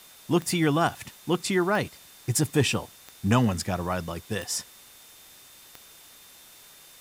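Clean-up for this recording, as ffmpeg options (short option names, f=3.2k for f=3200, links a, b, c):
-af "adeclick=t=4,bandreject=f=3.6k:w=30,afwtdn=0.0032"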